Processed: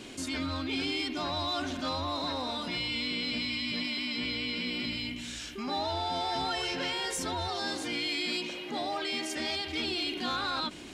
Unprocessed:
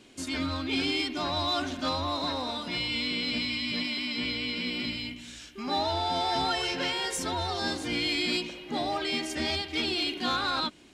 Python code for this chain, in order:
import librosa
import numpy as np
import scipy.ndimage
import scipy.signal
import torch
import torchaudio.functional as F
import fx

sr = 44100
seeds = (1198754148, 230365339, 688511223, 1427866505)

y = fx.highpass(x, sr, hz=260.0, slope=6, at=(7.48, 9.67))
y = fx.env_flatten(y, sr, amount_pct=50)
y = F.gain(torch.from_numpy(y), -4.5).numpy()